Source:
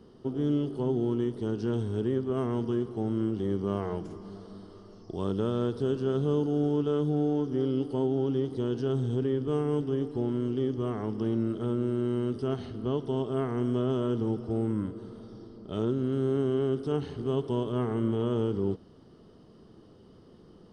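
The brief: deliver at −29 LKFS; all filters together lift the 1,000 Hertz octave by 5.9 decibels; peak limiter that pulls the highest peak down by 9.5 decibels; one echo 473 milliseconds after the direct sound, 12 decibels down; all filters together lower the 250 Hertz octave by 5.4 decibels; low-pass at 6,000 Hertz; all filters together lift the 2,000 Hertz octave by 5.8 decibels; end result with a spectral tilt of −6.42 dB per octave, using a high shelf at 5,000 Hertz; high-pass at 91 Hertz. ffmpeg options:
ffmpeg -i in.wav -af "highpass=91,lowpass=6000,equalizer=frequency=250:width_type=o:gain=-7.5,equalizer=frequency=1000:width_type=o:gain=6.5,equalizer=frequency=2000:width_type=o:gain=6,highshelf=frequency=5000:gain=-5,alimiter=level_in=1.5dB:limit=-24dB:level=0:latency=1,volume=-1.5dB,aecho=1:1:473:0.251,volume=7dB" out.wav

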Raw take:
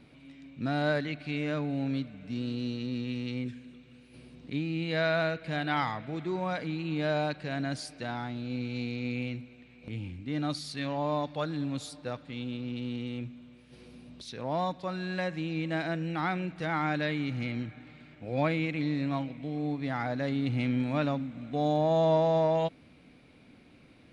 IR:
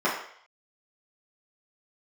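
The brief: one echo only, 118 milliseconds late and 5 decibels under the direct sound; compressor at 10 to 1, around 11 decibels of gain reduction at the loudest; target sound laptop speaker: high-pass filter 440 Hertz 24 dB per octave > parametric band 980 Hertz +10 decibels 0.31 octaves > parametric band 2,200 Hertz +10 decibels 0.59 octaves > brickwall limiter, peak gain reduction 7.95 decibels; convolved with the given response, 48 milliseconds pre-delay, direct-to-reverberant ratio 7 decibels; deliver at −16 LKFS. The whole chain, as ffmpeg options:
-filter_complex "[0:a]acompressor=threshold=-33dB:ratio=10,aecho=1:1:118:0.562,asplit=2[link_01][link_02];[1:a]atrim=start_sample=2205,adelay=48[link_03];[link_02][link_03]afir=irnorm=-1:irlink=0,volume=-22dB[link_04];[link_01][link_04]amix=inputs=2:normalize=0,highpass=frequency=440:width=0.5412,highpass=frequency=440:width=1.3066,equalizer=frequency=980:width_type=o:width=0.31:gain=10,equalizer=frequency=2200:width_type=o:width=0.59:gain=10,volume=22.5dB,alimiter=limit=-5dB:level=0:latency=1"

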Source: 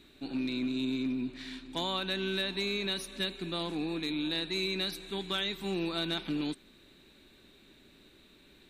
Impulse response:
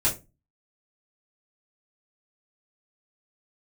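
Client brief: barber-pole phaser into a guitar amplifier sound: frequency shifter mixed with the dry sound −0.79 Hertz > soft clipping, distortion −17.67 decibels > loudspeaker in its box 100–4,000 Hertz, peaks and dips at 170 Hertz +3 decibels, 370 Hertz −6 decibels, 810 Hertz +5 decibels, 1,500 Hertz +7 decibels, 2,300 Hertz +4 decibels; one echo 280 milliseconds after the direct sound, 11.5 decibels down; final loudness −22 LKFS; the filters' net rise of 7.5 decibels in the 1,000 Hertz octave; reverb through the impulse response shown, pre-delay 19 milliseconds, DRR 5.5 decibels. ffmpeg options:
-filter_complex "[0:a]equalizer=frequency=1000:width_type=o:gain=5.5,aecho=1:1:280:0.266,asplit=2[link_01][link_02];[1:a]atrim=start_sample=2205,adelay=19[link_03];[link_02][link_03]afir=irnorm=-1:irlink=0,volume=-16dB[link_04];[link_01][link_04]amix=inputs=2:normalize=0,asplit=2[link_05][link_06];[link_06]afreqshift=-0.79[link_07];[link_05][link_07]amix=inputs=2:normalize=1,asoftclip=threshold=-27dB,highpass=100,equalizer=frequency=170:width_type=q:width=4:gain=3,equalizer=frequency=370:width_type=q:width=4:gain=-6,equalizer=frequency=810:width_type=q:width=4:gain=5,equalizer=frequency=1500:width_type=q:width=4:gain=7,equalizer=frequency=2300:width_type=q:width=4:gain=4,lowpass=frequency=4000:width=0.5412,lowpass=frequency=4000:width=1.3066,volume=14dB"

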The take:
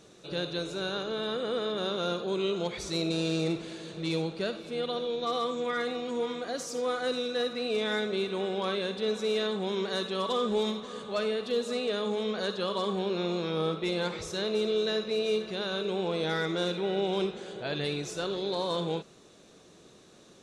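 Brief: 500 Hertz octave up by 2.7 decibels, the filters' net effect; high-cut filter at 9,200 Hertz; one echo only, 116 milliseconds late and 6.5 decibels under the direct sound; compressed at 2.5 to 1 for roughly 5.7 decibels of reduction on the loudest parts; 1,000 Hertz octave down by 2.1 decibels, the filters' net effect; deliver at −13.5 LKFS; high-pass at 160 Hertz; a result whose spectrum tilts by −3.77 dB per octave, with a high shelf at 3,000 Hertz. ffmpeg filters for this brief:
ffmpeg -i in.wav -af "highpass=160,lowpass=9200,equalizer=frequency=500:width_type=o:gain=4,equalizer=frequency=1000:width_type=o:gain=-5,highshelf=frequency=3000:gain=5.5,acompressor=threshold=-31dB:ratio=2.5,aecho=1:1:116:0.473,volume=18.5dB" out.wav

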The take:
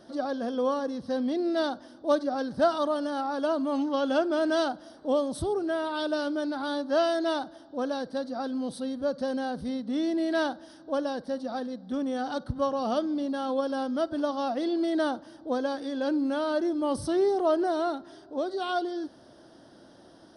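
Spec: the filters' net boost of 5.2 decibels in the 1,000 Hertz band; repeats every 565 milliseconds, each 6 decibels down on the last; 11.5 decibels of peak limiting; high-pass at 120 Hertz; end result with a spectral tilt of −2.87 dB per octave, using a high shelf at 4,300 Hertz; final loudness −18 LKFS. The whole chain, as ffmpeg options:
ffmpeg -i in.wav -af "highpass=120,equalizer=frequency=1000:width_type=o:gain=7,highshelf=frequency=4300:gain=3,alimiter=limit=-20.5dB:level=0:latency=1,aecho=1:1:565|1130|1695|2260|2825|3390:0.501|0.251|0.125|0.0626|0.0313|0.0157,volume=10.5dB" out.wav

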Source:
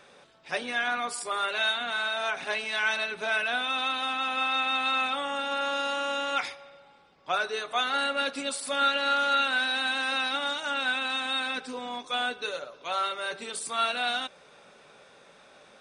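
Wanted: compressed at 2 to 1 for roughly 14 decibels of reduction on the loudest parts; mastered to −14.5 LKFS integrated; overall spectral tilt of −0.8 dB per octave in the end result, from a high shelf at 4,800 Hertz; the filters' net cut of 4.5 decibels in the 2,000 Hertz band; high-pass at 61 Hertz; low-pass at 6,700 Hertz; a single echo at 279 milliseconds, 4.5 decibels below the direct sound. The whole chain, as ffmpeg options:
ffmpeg -i in.wav -af "highpass=61,lowpass=6700,equalizer=frequency=2000:width_type=o:gain=-8,highshelf=frequency=4800:gain=4.5,acompressor=threshold=-51dB:ratio=2,aecho=1:1:279:0.596,volume=27dB" out.wav

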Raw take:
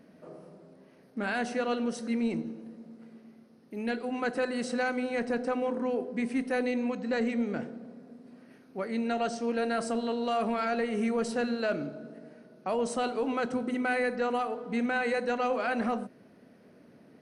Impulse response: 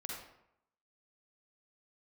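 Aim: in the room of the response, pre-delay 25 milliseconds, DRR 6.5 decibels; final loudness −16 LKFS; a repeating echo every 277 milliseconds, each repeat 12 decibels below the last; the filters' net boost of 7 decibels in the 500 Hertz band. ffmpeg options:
-filter_complex "[0:a]equalizer=frequency=500:width_type=o:gain=7.5,aecho=1:1:277|554|831:0.251|0.0628|0.0157,asplit=2[link_01][link_02];[1:a]atrim=start_sample=2205,adelay=25[link_03];[link_02][link_03]afir=irnorm=-1:irlink=0,volume=-6dB[link_04];[link_01][link_04]amix=inputs=2:normalize=0,volume=9dB"

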